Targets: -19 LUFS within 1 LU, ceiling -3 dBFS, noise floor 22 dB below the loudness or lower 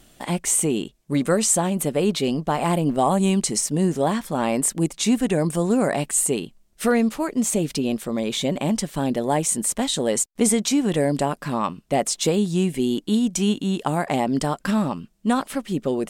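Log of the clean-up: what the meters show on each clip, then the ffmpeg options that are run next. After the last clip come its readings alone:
loudness -22.5 LUFS; peak level -7.5 dBFS; loudness target -19.0 LUFS
-> -af "volume=1.5"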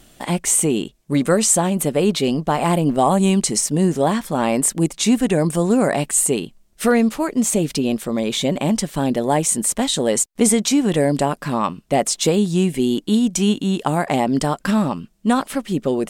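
loudness -19.0 LUFS; peak level -4.0 dBFS; noise floor -54 dBFS

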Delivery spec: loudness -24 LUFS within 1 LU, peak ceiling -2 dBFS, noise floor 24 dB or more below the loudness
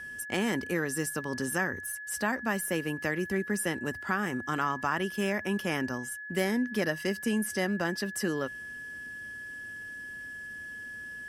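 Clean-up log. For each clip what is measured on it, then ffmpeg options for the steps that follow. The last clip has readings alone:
steady tone 1.7 kHz; tone level -39 dBFS; loudness -32.0 LUFS; peak level -14.5 dBFS; loudness target -24.0 LUFS
-> -af "bandreject=f=1700:w=30"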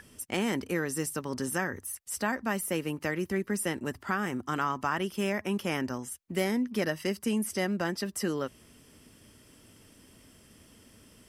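steady tone not found; loudness -31.5 LUFS; peak level -15.0 dBFS; loudness target -24.0 LUFS
-> -af "volume=2.37"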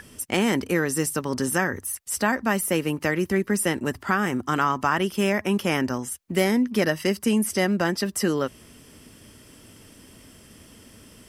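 loudness -24.0 LUFS; peak level -7.5 dBFS; noise floor -51 dBFS

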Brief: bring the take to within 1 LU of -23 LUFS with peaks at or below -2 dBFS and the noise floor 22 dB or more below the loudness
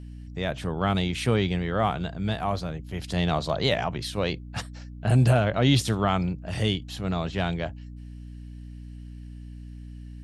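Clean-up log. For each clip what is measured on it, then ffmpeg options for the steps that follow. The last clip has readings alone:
hum 60 Hz; highest harmonic 300 Hz; hum level -39 dBFS; loudness -26.5 LUFS; peak level -7.5 dBFS; loudness target -23.0 LUFS
-> -af "bandreject=f=60:t=h:w=6,bandreject=f=120:t=h:w=6,bandreject=f=180:t=h:w=6,bandreject=f=240:t=h:w=6,bandreject=f=300:t=h:w=6"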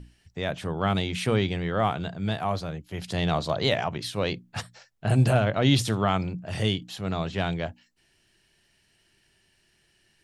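hum not found; loudness -27.0 LUFS; peak level -7.5 dBFS; loudness target -23.0 LUFS
-> -af "volume=1.58"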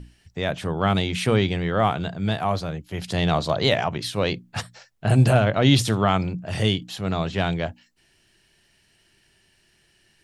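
loudness -23.0 LUFS; peak level -3.5 dBFS; noise floor -63 dBFS

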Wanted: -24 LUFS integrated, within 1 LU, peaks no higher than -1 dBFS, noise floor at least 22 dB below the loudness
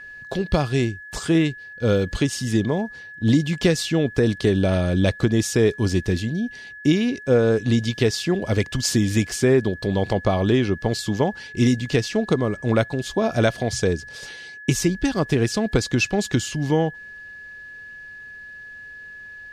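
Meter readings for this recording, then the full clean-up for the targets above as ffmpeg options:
steady tone 1.7 kHz; tone level -37 dBFS; loudness -22.0 LUFS; peak level -4.0 dBFS; loudness target -24.0 LUFS
-> -af "bandreject=f=1700:w=30"
-af "volume=0.794"

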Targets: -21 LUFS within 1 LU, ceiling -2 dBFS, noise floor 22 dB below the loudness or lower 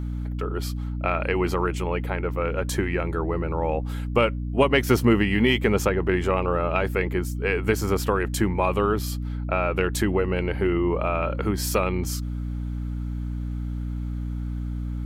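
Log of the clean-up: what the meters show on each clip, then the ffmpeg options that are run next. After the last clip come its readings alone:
hum 60 Hz; highest harmonic 300 Hz; hum level -26 dBFS; loudness -25.0 LUFS; peak level -5.0 dBFS; loudness target -21.0 LUFS
-> -af "bandreject=f=60:t=h:w=4,bandreject=f=120:t=h:w=4,bandreject=f=180:t=h:w=4,bandreject=f=240:t=h:w=4,bandreject=f=300:t=h:w=4"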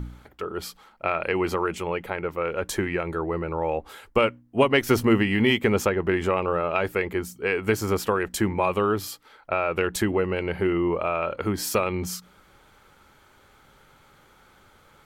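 hum not found; loudness -25.0 LUFS; peak level -5.0 dBFS; loudness target -21.0 LUFS
-> -af "volume=1.58,alimiter=limit=0.794:level=0:latency=1"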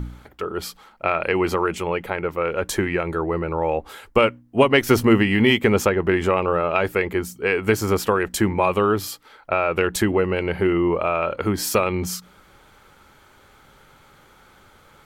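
loudness -21.0 LUFS; peak level -2.0 dBFS; noise floor -53 dBFS

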